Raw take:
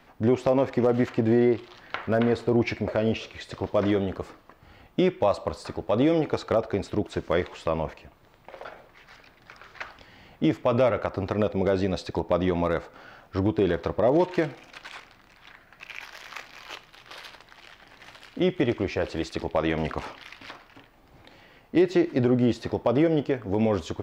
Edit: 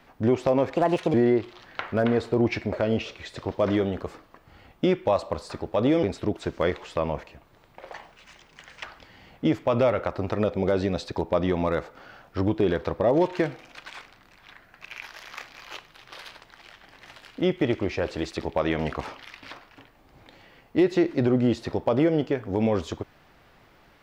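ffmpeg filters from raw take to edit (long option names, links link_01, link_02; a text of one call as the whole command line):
ffmpeg -i in.wav -filter_complex "[0:a]asplit=6[link_01][link_02][link_03][link_04][link_05][link_06];[link_01]atrim=end=0.764[link_07];[link_02]atrim=start=0.76:end=1.29,asetpts=PTS-STARTPTS,asetrate=61740,aresample=44100[link_08];[link_03]atrim=start=1.286:end=6.182[link_09];[link_04]atrim=start=6.728:end=8.624[link_10];[link_05]atrim=start=8.62:end=9.82,asetpts=PTS-STARTPTS,asetrate=57771,aresample=44100[link_11];[link_06]atrim=start=9.816[link_12];[link_07][link_08]acrossfade=duration=0.004:curve1=hsin:curve2=hsin[link_13];[link_13][link_09]acrossfade=duration=0.004:curve1=hsin:curve2=hsin[link_14];[link_14][link_10]acrossfade=duration=0.004:curve1=hsin:curve2=hsin[link_15];[link_15][link_11]acrossfade=duration=0.004:curve1=hsin:curve2=hsin[link_16];[link_16][link_12]acrossfade=duration=0.004:curve1=hsin:curve2=hsin" out.wav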